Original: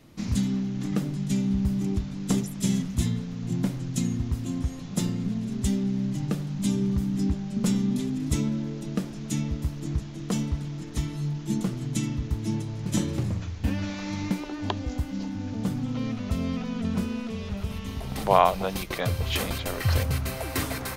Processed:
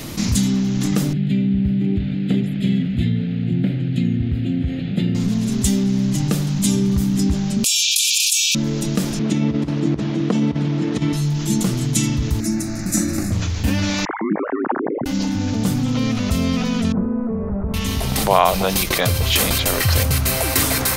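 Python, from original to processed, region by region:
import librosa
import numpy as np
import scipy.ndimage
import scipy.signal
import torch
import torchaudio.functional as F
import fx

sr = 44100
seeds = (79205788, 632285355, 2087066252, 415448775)

y = fx.chain(x, sr, fx.highpass(hz=82.0, slope=12),
    fx.air_absorb(metres=260.0),
    fx.fixed_phaser(hz=2500.0, stages=4), at=(1.13, 5.15))
y = fx.chain(y, sr, fx.brickwall_highpass(low_hz=2300.0),
    fx.env_flatten(amount_pct=100), at=(7.64, 8.55))
y = fx.chain(y, sr, fx.low_shelf(hz=430.0, db=12.0),
    fx.over_compress(threshold_db=-18.0, ratio=-0.5),
    fx.bandpass_edges(low_hz=260.0, high_hz=3000.0), at=(9.19, 11.13))
y = fx.chain(y, sr, fx.peak_eq(hz=530.0, db=-8.5, octaves=0.28),
    fx.fixed_phaser(hz=640.0, stages=8), at=(12.4, 13.32))
y = fx.chain(y, sr, fx.sine_speech(),
    fx.ellip_bandpass(low_hz=190.0, high_hz=1600.0, order=3, stop_db=40),
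    fx.ring_mod(carrier_hz=53.0), at=(14.05, 15.06))
y = fx.chain(y, sr, fx.gaussian_blur(sigma=7.9),
    fx.peak_eq(hz=100.0, db=-9.5, octaves=1.0), at=(16.92, 17.74))
y = fx.high_shelf(y, sr, hz=3500.0, db=10.0)
y = fx.env_flatten(y, sr, amount_pct=50)
y = y * librosa.db_to_amplitude(3.0)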